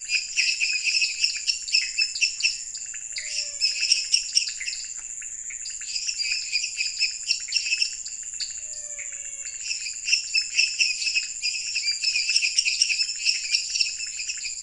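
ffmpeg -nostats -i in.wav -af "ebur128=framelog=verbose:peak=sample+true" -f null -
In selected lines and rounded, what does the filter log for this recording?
Integrated loudness:
  I:         -23.3 LUFS
  Threshold: -33.3 LUFS
Loudness range:
  LRA:         4.2 LU
  Threshold: -43.6 LUFS
  LRA low:   -25.7 LUFS
  LRA high:  -21.5 LUFS
Sample peak:
  Peak:       -4.4 dBFS
True peak:
  Peak:       -4.4 dBFS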